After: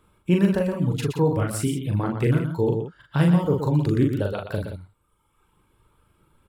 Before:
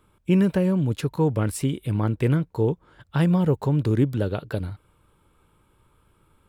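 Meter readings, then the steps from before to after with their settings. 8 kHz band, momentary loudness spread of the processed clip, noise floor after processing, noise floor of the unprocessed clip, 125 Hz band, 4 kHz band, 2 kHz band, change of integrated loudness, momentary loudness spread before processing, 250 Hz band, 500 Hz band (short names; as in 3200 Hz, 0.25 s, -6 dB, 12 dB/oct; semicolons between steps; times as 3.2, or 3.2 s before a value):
+2.0 dB, 10 LU, -68 dBFS, -63 dBFS, +0.5 dB, +1.5 dB, +2.0 dB, +0.5 dB, 9 LU, 0.0 dB, +1.5 dB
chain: reverb removal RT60 1.3 s; on a send: tapped delay 40/120/174 ms -3/-7.5/-10.5 dB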